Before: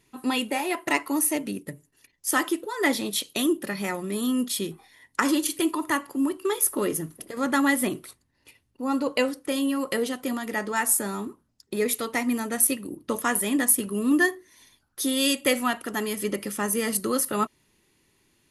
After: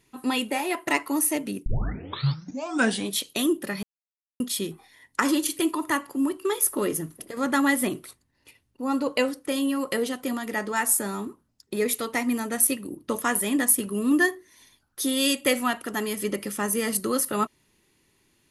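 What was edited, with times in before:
1.66 tape start 1.49 s
3.83–4.4 mute

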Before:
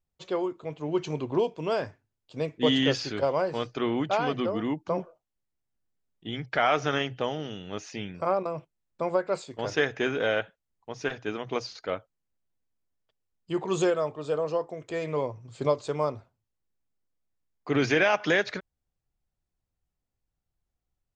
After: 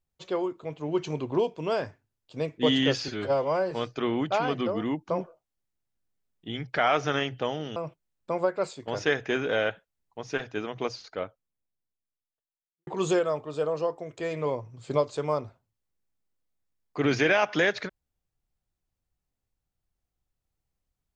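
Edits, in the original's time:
3.08–3.5 stretch 1.5×
7.55–8.47 cut
11.32–13.58 studio fade out

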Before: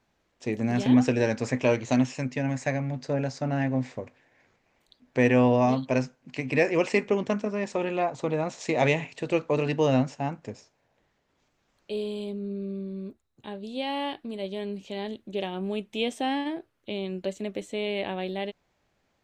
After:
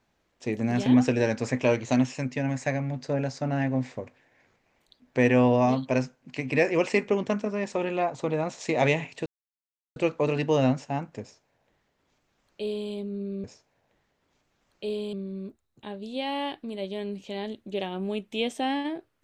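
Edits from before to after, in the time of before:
9.26 insert silence 0.70 s
10.51–12.2 copy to 12.74

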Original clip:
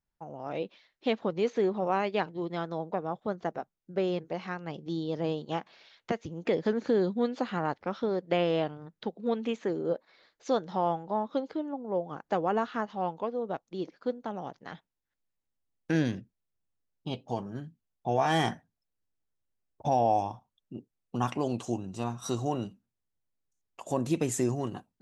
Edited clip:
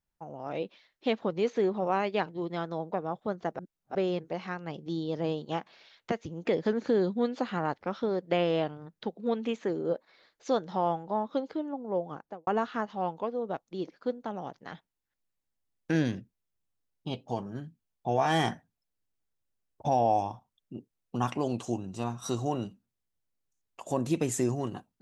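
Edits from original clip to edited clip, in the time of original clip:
3.59–3.95 reverse
12.07–12.47 studio fade out

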